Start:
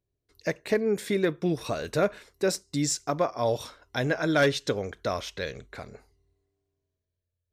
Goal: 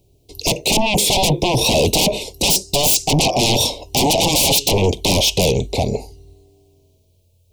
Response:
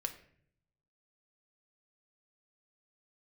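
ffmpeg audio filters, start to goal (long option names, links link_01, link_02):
-af "aeval=exprs='0.224*sin(PI/2*10*val(0)/0.224)':channel_layout=same,asuperstop=centerf=1500:order=8:qfactor=0.93,volume=2.5dB"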